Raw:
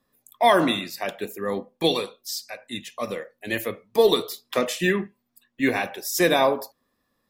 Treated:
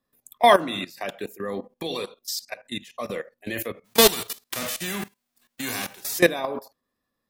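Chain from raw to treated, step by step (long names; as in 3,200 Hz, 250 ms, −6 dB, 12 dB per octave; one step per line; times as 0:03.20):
0:03.84–0:06.17: spectral envelope flattened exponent 0.3
output level in coarse steps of 17 dB
notch filter 900 Hz, Q 28
level +4.5 dB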